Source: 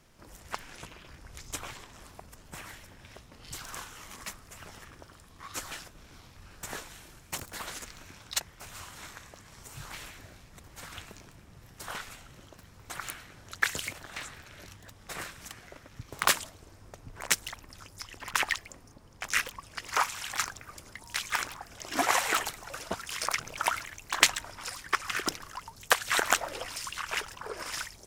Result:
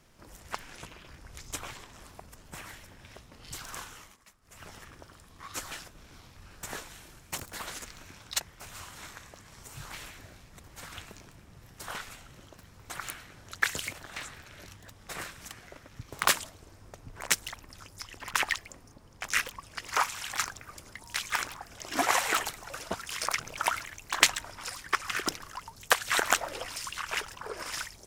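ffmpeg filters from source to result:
-filter_complex "[0:a]asplit=3[a][b][c];[a]atrim=end=4.17,asetpts=PTS-STARTPTS,afade=t=out:st=3.93:d=0.24:silence=0.125893[d];[b]atrim=start=4.17:end=4.41,asetpts=PTS-STARTPTS,volume=-18dB[e];[c]atrim=start=4.41,asetpts=PTS-STARTPTS,afade=t=in:d=0.24:silence=0.125893[f];[d][e][f]concat=n=3:v=0:a=1"

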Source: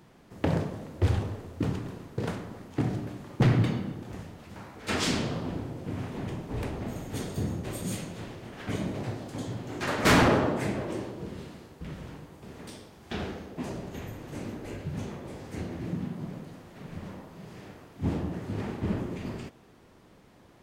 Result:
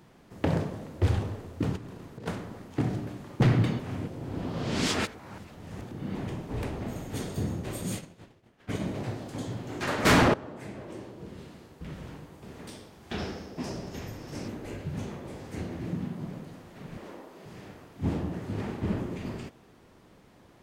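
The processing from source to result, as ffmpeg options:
-filter_complex "[0:a]asettb=1/sr,asplit=3[a][b][c];[a]atrim=end=1.764[d];[b]atrim=start=1.76:end=2.26,asetpts=PTS-STARTPTS,afade=t=in:d=0.004:c=qsin,afade=t=out:st=0.496:d=0.004:c=qsin,acompressor=threshold=-38dB:ratio=10:attack=3.2:release=140:knee=1:detection=peak[e];[c]atrim=start=2.256[f];[d][e]acrossfade=d=0.004:c1=hsin:c2=qsin[g];[g][f]acrossfade=d=0.004:c1=qsin:c2=hsin,asplit=3[h][i][j];[h]afade=t=out:st=7.98:d=0.02[k];[i]agate=range=-33dB:threshold=-31dB:ratio=3:release=100:detection=peak,afade=t=in:st=7.98:d=0.02,afade=t=out:st=8.8:d=0.02[l];[j]afade=t=in:st=8.8:d=0.02[m];[k][l][m]amix=inputs=3:normalize=0,asettb=1/sr,asplit=3[n][o][p];[n]atrim=end=13.184[q];[o]atrim=start=13.18:end=14.48,asetpts=PTS-STARTPTS,afade=t=in:d=0.004:c=qsin,afade=t=out:st=1.296:d=0.004:c=qsin,equalizer=f=5.3k:t=o:w=0.3:g=14[r];[p]atrim=start=14.476[s];[q][r]acrossfade=d=0.004:c1=hsin:c2=qsin[t];[t][s]acrossfade=d=0.004:c1=qsin:c2=hsin,asettb=1/sr,asplit=3[u][v][w];[u]atrim=end=16.974[x];[v]atrim=start=16.97:end=17.45,asetpts=PTS-STARTPTS,afade=t=in:d=0.004:c=qsin,afade=t=out:st=0.476:d=0.004:c=qsin,lowshelf=f=220:t=q:w=1.5:g=-13[y];[w]atrim=start=17.446[z];[x][y]acrossfade=d=0.004:c1=hsin:c2=qsin[aa];[aa][z]acrossfade=d=0.004:c1=qsin:c2=hsin,asplit=4[ab][ac][ad][ae];[ab]atrim=end=3.792[af];[ac]atrim=start=3.788:end=6.152,asetpts=PTS-STARTPTS,areverse[ag];[ad]atrim=start=6.148:end=10.34,asetpts=PTS-STARTPTS,afade=t=out:st=4.188:d=0.004:c=hsin:silence=0.112202[ah];[ae]atrim=start=10.34,asetpts=PTS-STARTPTS,afade=t=in:d=1.73:silence=0.112202[ai];[af][ag]acrossfade=d=0.004:c1=hsin:c2=hsin[aj];[ah][ai]concat=n=2:v=0:a=1[ak];[aj][ak]acrossfade=d=0.004:c1=hsin:c2=hsin"

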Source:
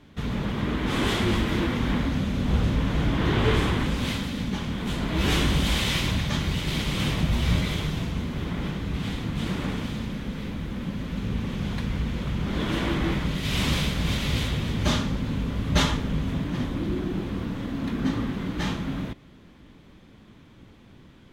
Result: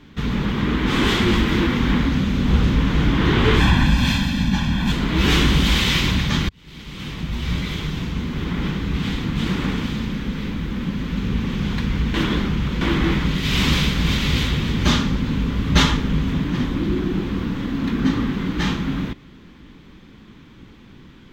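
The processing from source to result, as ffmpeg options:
-filter_complex "[0:a]asettb=1/sr,asplit=3[a][b][c];[a]atrim=end=3.604[d];[b]atrim=start=3.6:end=4.92,asetpts=PTS-STARTPTS,afade=t=in:d=0.004:c=qsin,afade=t=out:st=1.316:d=0.004:c=qsin,aecho=1:1:1.2:0.83,atrim=end_sample=58212[e];[c]atrim=start=4.916[f];[d][e]acrossfade=d=0.004:c1=hsin:c2=qsin[g];[g][f]acrossfade=d=0.004:c1=qsin:c2=hsin,asplit=4[h][i][j][k];[h]atrim=end=6.49,asetpts=PTS-STARTPTS,afade=t=out:st=6.486:d=0.004:c=hsin[l];[i]atrim=start=6.49:end=12.142,asetpts=PTS-STARTPTS,afade=t=in:d=2.18[m];[j]atrim=start=12.138:end=12.812,asetpts=PTS-STARTPTS,areverse[n];[k]atrim=start=12.808[o];[l][m]concat=n=2:v=0:a=1[p];[p][n]acrossfade=d=0.004:c1=hsin:c2=hsin[q];[q][o]acrossfade=d=0.004:c1=hsin:c2=hsin,equalizer=f=100:t=o:w=0.67:g=-5,equalizer=f=630:t=o:w=0.67:g=-9,equalizer=f=10k:t=o:w=0.67:g=-10,volume=7.5dB"

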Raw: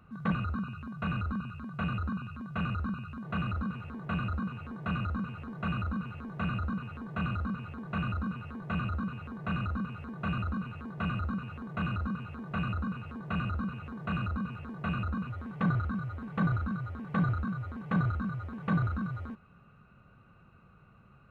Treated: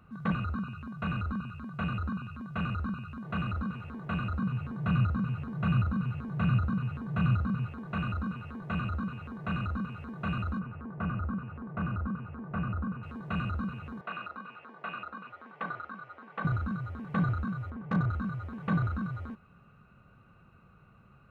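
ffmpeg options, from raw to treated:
-filter_complex "[0:a]asettb=1/sr,asplit=3[a][b][c];[a]atrim=end=4.394[d];[b]atrim=start=4.39:end=7.68,asetpts=PTS-STARTPTS,afade=t=in:d=0.004:c=qsin,afade=t=out:st=3.286:d=0.004:c=qsin,equalizer=f=130:t=o:w=0.77:g=11.5[e];[c]atrim=start=7.676[f];[d][e]acrossfade=d=0.004:c1=hsin:c2=qsin[g];[g][f]acrossfade=d=0.004:c1=qsin:c2=hsin,asettb=1/sr,asplit=3[h][i][j];[h]atrim=end=10.594[k];[i]atrim=start=10.59:end=13.03,asetpts=PTS-STARTPTS,afade=t=in:d=0.004:c=qsin,afade=t=out:st=2.436:d=0.004:c=qsin,lowpass=1.6k[l];[j]atrim=start=13.026[m];[k][l]acrossfade=d=0.004:c1=hsin:c2=qsin[n];[n][m]acrossfade=d=0.004:c1=qsin:c2=hsin,asettb=1/sr,asplit=3[o][p][q];[o]atrim=end=14.014[r];[p]atrim=start=14.01:end=16.45,asetpts=PTS-STARTPTS,afade=t=in:d=0.004:c=qsin,afade=t=out:st=2.436:d=0.004:c=qsin,highpass=510,lowpass=3.5k[s];[q]atrim=start=16.446[t];[r][s]acrossfade=d=0.004:c1=hsin:c2=qsin[u];[u][t]acrossfade=d=0.004:c1=qsin:c2=hsin,asettb=1/sr,asplit=3[v][w][x];[v]atrim=end=17.704[y];[w]atrim=start=17.7:end=18.11,asetpts=PTS-STARTPTS,afade=t=in:d=0.004:c=qsin,afade=t=out:st=0.406:d=0.004:c=qsin,adynamicsmooth=sensitivity=3:basefreq=2.1k[z];[x]atrim=start=18.106[aa];[y][z]acrossfade=d=0.004:c1=hsin:c2=qsin[ab];[ab][aa]acrossfade=d=0.004:c1=qsin:c2=hsin"

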